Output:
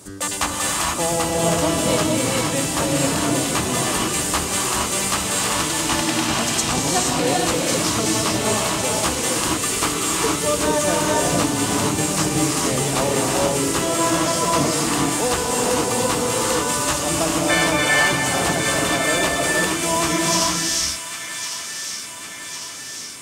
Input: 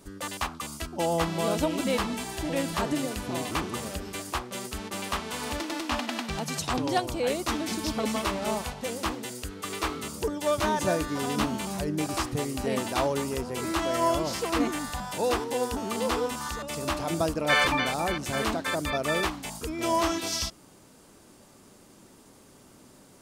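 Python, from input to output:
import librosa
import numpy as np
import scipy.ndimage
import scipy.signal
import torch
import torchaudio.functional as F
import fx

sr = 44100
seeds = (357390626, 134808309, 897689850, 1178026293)

p1 = fx.octave_divider(x, sr, octaves=1, level_db=0.0)
p2 = fx.rider(p1, sr, range_db=10, speed_s=0.5)
p3 = p1 + F.gain(torch.from_numpy(p2), 1.5).numpy()
p4 = fx.highpass(p3, sr, hz=190.0, slope=6)
p5 = fx.peak_eq(p4, sr, hz=7800.0, db=9.5, octaves=0.94)
p6 = p5 + fx.echo_wet_highpass(p5, sr, ms=1103, feedback_pct=64, hz=1600.0, wet_db=-8, dry=0)
p7 = fx.rev_gated(p6, sr, seeds[0], gate_ms=500, shape='rising', drr_db=-2.5)
y = F.gain(torch.from_numpy(p7), -3.0).numpy()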